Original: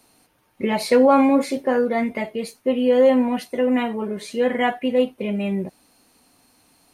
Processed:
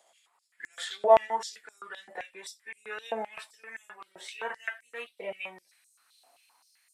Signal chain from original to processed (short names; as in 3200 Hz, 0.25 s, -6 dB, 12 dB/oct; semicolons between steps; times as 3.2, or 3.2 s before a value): gliding pitch shift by -4.5 st ending unshifted; stepped high-pass 7.7 Hz 690–7100 Hz; gain -8 dB